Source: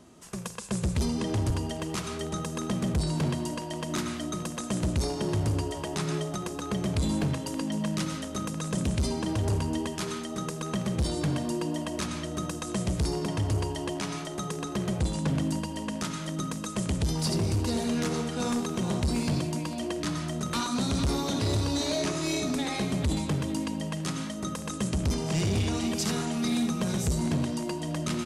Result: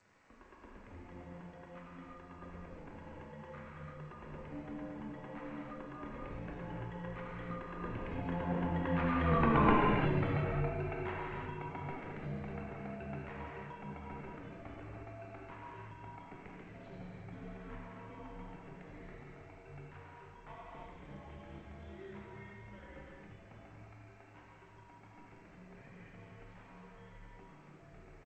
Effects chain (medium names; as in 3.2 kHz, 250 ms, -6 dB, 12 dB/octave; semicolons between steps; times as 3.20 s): Doppler pass-by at 9.53 s, 35 m/s, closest 8.6 m; on a send: delay 278 ms -15.5 dB; on the sum: reverb removal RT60 1.4 s; in parallel at -1 dB: compression 10:1, threshold -56 dBFS, peak gain reduction 26.5 dB; on the sum: crackle 390 per s -58 dBFS; gated-style reverb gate 380 ms flat, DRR -5 dB; mistuned SSB -180 Hz 270–2500 Hz; trim +7 dB; G.722 64 kbps 16 kHz